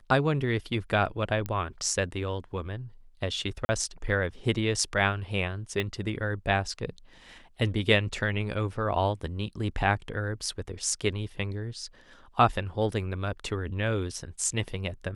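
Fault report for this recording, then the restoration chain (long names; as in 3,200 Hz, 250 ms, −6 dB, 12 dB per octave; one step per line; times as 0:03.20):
0:01.46: click −19 dBFS
0:03.65–0:03.69: drop-out 40 ms
0:05.80: click −16 dBFS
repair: click removal
repair the gap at 0:03.65, 40 ms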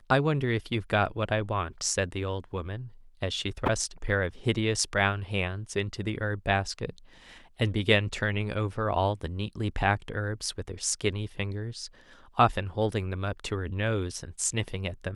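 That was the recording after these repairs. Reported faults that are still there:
0:05.80: click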